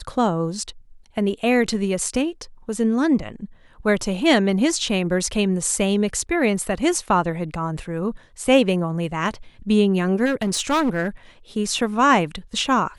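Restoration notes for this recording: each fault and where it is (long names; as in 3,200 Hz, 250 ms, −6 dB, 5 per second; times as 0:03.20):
0:10.25–0:11.08: clipping −16.5 dBFS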